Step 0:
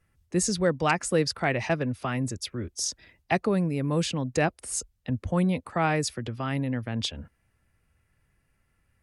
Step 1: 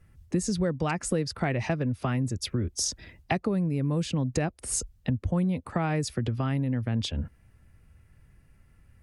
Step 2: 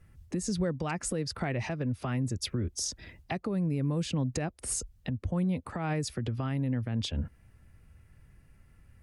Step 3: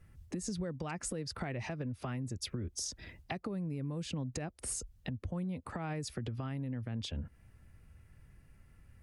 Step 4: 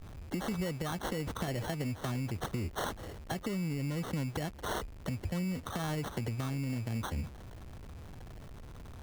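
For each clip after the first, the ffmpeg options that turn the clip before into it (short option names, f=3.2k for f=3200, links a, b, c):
-af "lowshelf=f=310:g=10,acompressor=threshold=-29dB:ratio=5,volume=4dB"
-af "alimiter=limit=-22dB:level=0:latency=1:release=222"
-af "acompressor=threshold=-34dB:ratio=4,volume=-1.5dB"
-af "aeval=exprs='val(0)+0.5*0.00501*sgn(val(0))':c=same,acrusher=samples=18:mix=1:aa=0.000001,volume=2dB"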